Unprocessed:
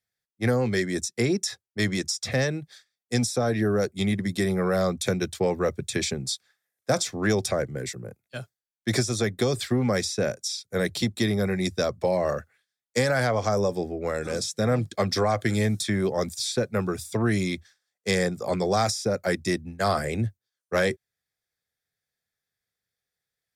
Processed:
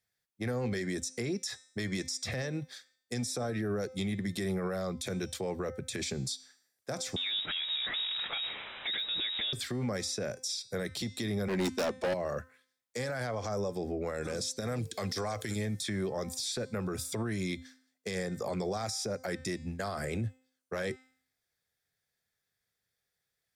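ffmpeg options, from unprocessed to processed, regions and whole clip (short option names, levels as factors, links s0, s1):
-filter_complex "[0:a]asettb=1/sr,asplit=3[s0][s1][s2];[s0]atrim=end=7.164[s3];[s1]atrim=start=7.16:end=9.53,asetpts=PTS-STARTPTS,afade=t=in:d=0.004:c=qsin,afade=t=out:st=2.366:d=0.004:c=qsin,aeval=exprs='val(0)+0.5*0.0398*sgn(val(0))':c=same,lowpass=f=3300:t=q:w=0.5098,lowpass=f=3300:t=q:w=0.6013,lowpass=f=3300:t=q:w=0.9,lowpass=f=3300:t=q:w=2.563,afreqshift=-3900,deesser=0.5[s4];[s2]atrim=start=9.526[s5];[s3][s4]acrossfade=d=0.004:c1=hsin:c2=qsin[s6];[s6][s5]acrossfade=d=0.004:c1=qsin:c2=hsin,asettb=1/sr,asplit=3[s7][s8][s9];[s7]atrim=end=11.484[s10];[s8]atrim=start=11.48:end=12.14,asetpts=PTS-STARTPTS,afade=t=in:d=0.004:c=qsin,afade=t=out:st=0.656:d=0.004:c=qsin,lowpass=9400,lowshelf=f=180:t=q:w=3:g=-8.5,asoftclip=type=hard:threshold=0.0473[s11];[s9]atrim=start=12.136[s12];[s10][s11]acrossfade=d=0.004:c1=hsin:c2=qsin[s13];[s13][s12]acrossfade=d=0.004:c1=qsin:c2=hsin,asettb=1/sr,asplit=3[s14][s15][s16];[s14]atrim=end=14.604[s17];[s15]atrim=start=14.6:end=15.56,asetpts=PTS-STARTPTS,afade=t=in:d=0.004:c=qsin,afade=t=out:st=0.956:d=0.004:c=qsin,highshelf=f=3100:g=11,acompressor=threshold=0.0398:ratio=4:attack=3.2:release=140:knee=1:detection=peak,aeval=exprs='val(0)+0.00251*sin(2*PI*450*n/s)':c=same[s18];[s16]atrim=start=15.556[s19];[s17][s18]acrossfade=d=0.004:c1=hsin:c2=qsin[s20];[s20][s19]acrossfade=d=0.004:c1=qsin:c2=hsin,acompressor=threshold=0.0355:ratio=4,bandreject=f=258.7:t=h:w=4,bandreject=f=517.4:t=h:w=4,bandreject=f=776.1:t=h:w=4,bandreject=f=1034.8:t=h:w=4,bandreject=f=1293.5:t=h:w=4,bandreject=f=1552.2:t=h:w=4,bandreject=f=1810.9:t=h:w=4,bandreject=f=2069.6:t=h:w=4,bandreject=f=2328.3:t=h:w=4,bandreject=f=2587:t=h:w=4,bandreject=f=2845.7:t=h:w=4,bandreject=f=3104.4:t=h:w=4,bandreject=f=3363.1:t=h:w=4,bandreject=f=3621.8:t=h:w=4,bandreject=f=3880.5:t=h:w=4,bandreject=f=4139.2:t=h:w=4,bandreject=f=4397.9:t=h:w=4,bandreject=f=4656.6:t=h:w=4,bandreject=f=4915.3:t=h:w=4,bandreject=f=5174:t=h:w=4,bandreject=f=5432.7:t=h:w=4,bandreject=f=5691.4:t=h:w=4,bandreject=f=5950.1:t=h:w=4,bandreject=f=6208.8:t=h:w=4,bandreject=f=6467.5:t=h:w=4,bandreject=f=6726.2:t=h:w=4,bandreject=f=6984.9:t=h:w=4,bandreject=f=7243.6:t=h:w=4,bandreject=f=7502.3:t=h:w=4,bandreject=f=7761:t=h:w=4,bandreject=f=8019.7:t=h:w=4,bandreject=f=8278.4:t=h:w=4,bandreject=f=8537.1:t=h:w=4,bandreject=f=8795.8:t=h:w=4,bandreject=f=9054.5:t=h:w=4,alimiter=level_in=1.58:limit=0.0631:level=0:latency=1:release=84,volume=0.631,volume=1.26"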